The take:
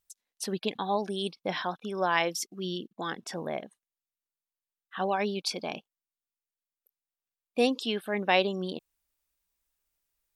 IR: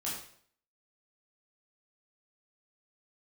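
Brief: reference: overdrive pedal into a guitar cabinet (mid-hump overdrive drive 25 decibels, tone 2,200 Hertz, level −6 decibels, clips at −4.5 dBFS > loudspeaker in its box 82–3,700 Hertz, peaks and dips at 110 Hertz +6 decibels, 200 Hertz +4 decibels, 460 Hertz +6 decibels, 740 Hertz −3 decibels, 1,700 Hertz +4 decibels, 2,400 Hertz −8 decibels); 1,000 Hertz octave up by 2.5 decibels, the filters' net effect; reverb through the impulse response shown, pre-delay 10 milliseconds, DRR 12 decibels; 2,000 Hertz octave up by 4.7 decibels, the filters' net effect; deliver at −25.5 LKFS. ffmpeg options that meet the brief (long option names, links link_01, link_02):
-filter_complex "[0:a]equalizer=frequency=1000:width_type=o:gain=4,equalizer=frequency=2000:width_type=o:gain=4.5,asplit=2[link_01][link_02];[1:a]atrim=start_sample=2205,adelay=10[link_03];[link_02][link_03]afir=irnorm=-1:irlink=0,volume=-14.5dB[link_04];[link_01][link_04]amix=inputs=2:normalize=0,asplit=2[link_05][link_06];[link_06]highpass=frequency=720:poles=1,volume=25dB,asoftclip=type=tanh:threshold=-4.5dB[link_07];[link_05][link_07]amix=inputs=2:normalize=0,lowpass=frequency=2200:poles=1,volume=-6dB,highpass=82,equalizer=frequency=110:width_type=q:width=4:gain=6,equalizer=frequency=200:width_type=q:width=4:gain=4,equalizer=frequency=460:width_type=q:width=4:gain=6,equalizer=frequency=740:width_type=q:width=4:gain=-3,equalizer=frequency=1700:width_type=q:width=4:gain=4,equalizer=frequency=2400:width_type=q:width=4:gain=-8,lowpass=frequency=3700:width=0.5412,lowpass=frequency=3700:width=1.3066,volume=-7.5dB"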